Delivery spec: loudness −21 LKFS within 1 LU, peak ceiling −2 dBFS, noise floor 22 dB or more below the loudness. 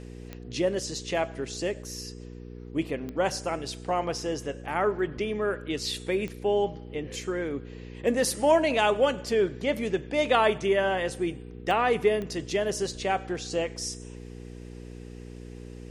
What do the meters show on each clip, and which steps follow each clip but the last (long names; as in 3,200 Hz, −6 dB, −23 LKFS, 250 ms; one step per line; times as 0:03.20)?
number of clicks 5; mains hum 60 Hz; hum harmonics up to 480 Hz; level of the hum −40 dBFS; integrated loudness −28.0 LKFS; sample peak −9.5 dBFS; target loudness −21.0 LKFS
→ click removal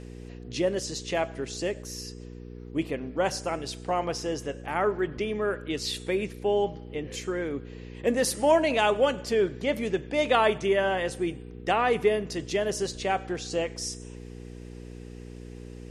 number of clicks 0; mains hum 60 Hz; hum harmonics up to 480 Hz; level of the hum −40 dBFS
→ hum removal 60 Hz, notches 8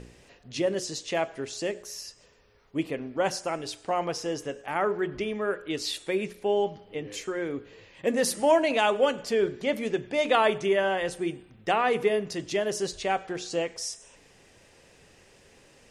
mains hum none found; integrated loudness −28.0 LKFS; sample peak −9.5 dBFS; target loudness −21.0 LKFS
→ level +7 dB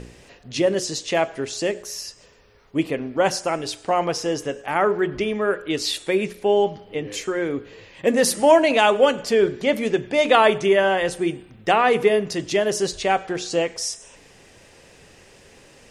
integrated loudness −21.0 LKFS; sample peak −2.5 dBFS; background noise floor −51 dBFS